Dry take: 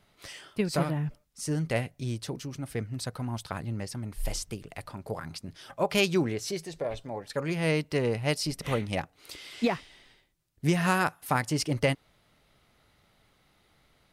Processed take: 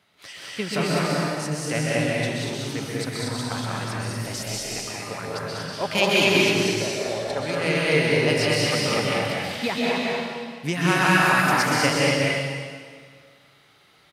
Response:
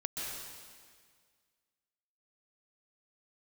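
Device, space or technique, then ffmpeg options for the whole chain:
stadium PA: -filter_complex "[0:a]highpass=120,equalizer=f=2.6k:t=o:w=2.9:g=6.5,aecho=1:1:195.3|239.1:0.708|0.708[a];[1:a]atrim=start_sample=2205[b];[a][b]afir=irnorm=-1:irlink=0"

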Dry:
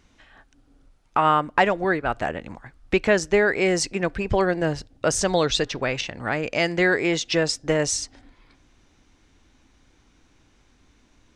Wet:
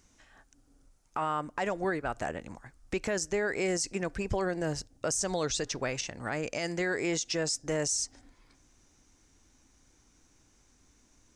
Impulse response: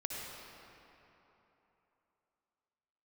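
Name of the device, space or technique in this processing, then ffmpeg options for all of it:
over-bright horn tweeter: -af "highshelf=f=4.8k:t=q:w=1.5:g=9,alimiter=limit=-15dB:level=0:latency=1:release=62,volume=-6.5dB"

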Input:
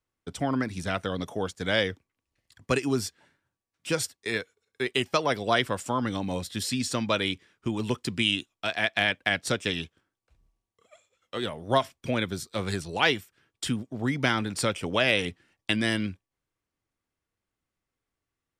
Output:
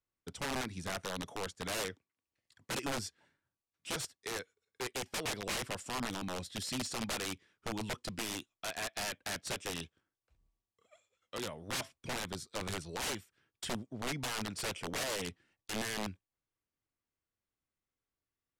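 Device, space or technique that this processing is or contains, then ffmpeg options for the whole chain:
overflowing digital effects unit: -filter_complex "[0:a]asettb=1/sr,asplit=3[a][b][c];[a]atrim=end=1.834[d];[b]atrim=start=1.83:end=2.72,asetpts=PTS-STARTPTS,afade=t=in:d=0.004:c=qsin,afade=t=out:st=0.886:d=0.004:c=qsin,highpass=f=160:p=1[e];[c]atrim=start=2.716[f];[d][e]acrossfade=d=0.004:c1=hsin:c2=qsin[g];[g][f]acrossfade=d=0.004:c1=qsin:c2=hsin,aeval=exprs='(mod(12.6*val(0)+1,2)-1)/12.6':c=same,lowpass=11k,volume=-8dB"

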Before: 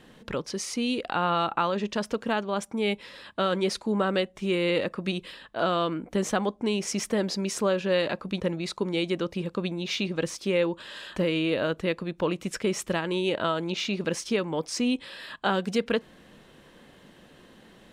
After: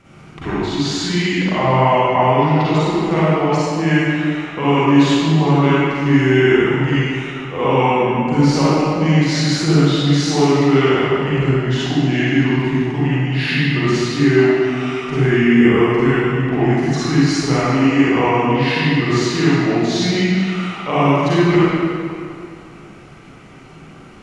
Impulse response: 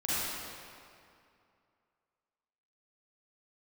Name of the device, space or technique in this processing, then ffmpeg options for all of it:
slowed and reverbed: -filter_complex "[0:a]asetrate=32634,aresample=44100[a];[1:a]atrim=start_sample=2205[b];[a][b]afir=irnorm=-1:irlink=0,volume=3.5dB"

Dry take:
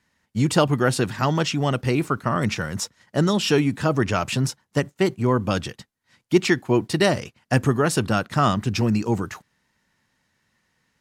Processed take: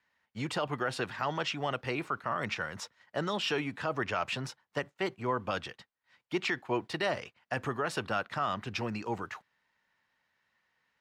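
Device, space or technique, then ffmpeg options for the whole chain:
DJ mixer with the lows and highs turned down: -filter_complex "[0:a]acrossover=split=500 4100:gain=0.224 1 0.178[a][b][c];[a][b][c]amix=inputs=3:normalize=0,alimiter=limit=-16dB:level=0:latency=1:release=32,volume=-4.5dB"

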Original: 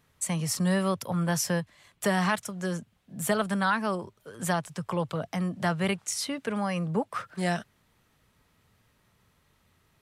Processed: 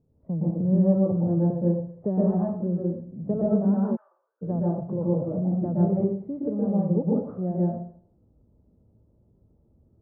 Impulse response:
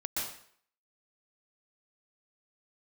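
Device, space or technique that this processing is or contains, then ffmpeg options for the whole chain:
next room: -filter_complex "[0:a]lowpass=f=520:w=0.5412,lowpass=f=520:w=1.3066[a];[1:a]atrim=start_sample=2205[b];[a][b]afir=irnorm=-1:irlink=0,asplit=3[c][d][e];[c]afade=t=out:st=3.95:d=0.02[f];[d]highpass=f=1.5k:w=0.5412,highpass=f=1.5k:w=1.3066,afade=t=in:st=3.95:d=0.02,afade=t=out:st=4.41:d=0.02[g];[e]afade=t=in:st=4.41:d=0.02[h];[f][g][h]amix=inputs=3:normalize=0,volume=4dB"

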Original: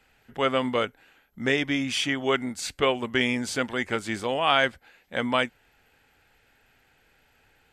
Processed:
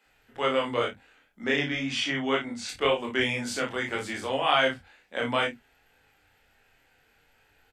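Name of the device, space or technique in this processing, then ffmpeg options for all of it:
double-tracked vocal: -filter_complex "[0:a]asplit=2[a][b];[b]adelay=34,volume=-4dB[c];[a][c]amix=inputs=2:normalize=0,flanger=delay=20:depth=3.7:speed=2,asettb=1/sr,asplit=3[d][e][f];[d]atrim=end=1.444[g];[e]atrim=start=1.44:end=2.69,asetpts=PTS-STARTPTS,afade=t=in:d=0.004:c=qsin,afade=t=out:st=1.246:d=0.004:c=qsin,lowpass=6.1k[h];[f]atrim=start=2.686[i];[g][h]acrossfade=d=0.004:c1=hsin:c2=qsin[j];[j][i]acrossfade=d=0.004:c1=qsin:c2=hsin,asplit=2[k][l];[l]adelay=30,volume=-11.5dB[m];[k][m]amix=inputs=2:normalize=0,acrossover=split=210[n][o];[n]adelay=50[p];[p][o]amix=inputs=2:normalize=0"

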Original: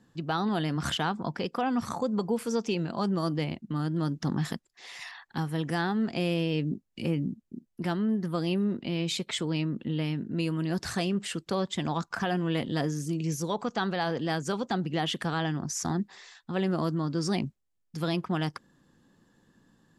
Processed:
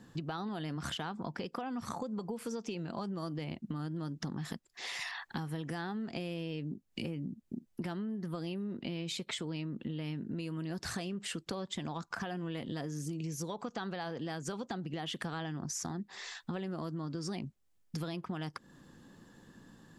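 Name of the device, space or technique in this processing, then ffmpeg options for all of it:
serial compression, leveller first: -af "acompressor=threshold=-31dB:ratio=2.5,acompressor=threshold=-43dB:ratio=6,volume=6.5dB"

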